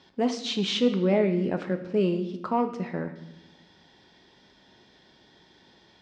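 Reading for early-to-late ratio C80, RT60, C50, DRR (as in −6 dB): 13.0 dB, 0.90 s, 11.0 dB, 6.5 dB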